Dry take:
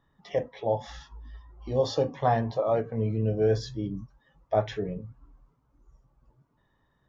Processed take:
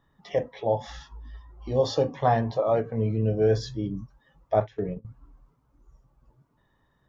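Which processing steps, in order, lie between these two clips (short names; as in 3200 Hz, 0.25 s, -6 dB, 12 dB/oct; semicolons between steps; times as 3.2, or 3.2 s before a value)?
4.6–5.05 gate -33 dBFS, range -19 dB; gain +2 dB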